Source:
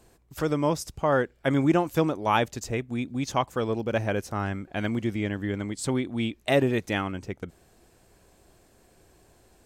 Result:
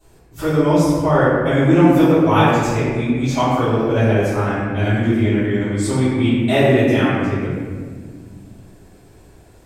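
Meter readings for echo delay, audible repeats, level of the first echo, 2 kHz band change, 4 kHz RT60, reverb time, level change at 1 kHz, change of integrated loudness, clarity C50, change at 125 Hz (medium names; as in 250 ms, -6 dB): no echo, no echo, no echo, +9.0 dB, 1.0 s, 1.7 s, +9.0 dB, +11.0 dB, -3.0 dB, +13.0 dB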